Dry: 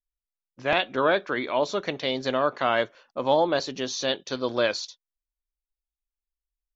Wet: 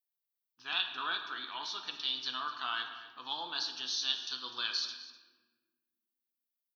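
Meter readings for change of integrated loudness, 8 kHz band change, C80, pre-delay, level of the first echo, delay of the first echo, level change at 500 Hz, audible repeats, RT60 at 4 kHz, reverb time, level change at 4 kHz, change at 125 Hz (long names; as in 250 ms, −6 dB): −9.5 dB, can't be measured, 8.5 dB, 3 ms, −16.0 dB, 251 ms, −31.0 dB, 1, 0.85 s, 1.3 s, −1.0 dB, below −25 dB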